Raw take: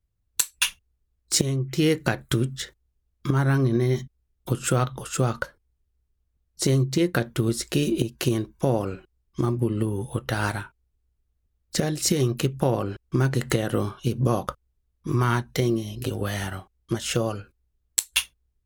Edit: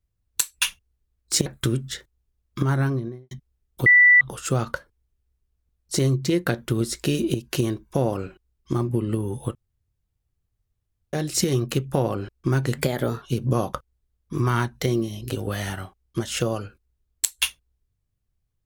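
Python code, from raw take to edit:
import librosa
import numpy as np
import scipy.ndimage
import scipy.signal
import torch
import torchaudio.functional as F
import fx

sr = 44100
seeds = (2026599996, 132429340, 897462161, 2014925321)

y = fx.studio_fade_out(x, sr, start_s=3.38, length_s=0.61)
y = fx.edit(y, sr, fx.cut(start_s=1.46, length_s=0.68),
    fx.bleep(start_s=4.54, length_s=0.35, hz=1970.0, db=-10.0),
    fx.room_tone_fill(start_s=10.23, length_s=1.58),
    fx.speed_span(start_s=13.46, length_s=0.5, speed=1.14), tone=tone)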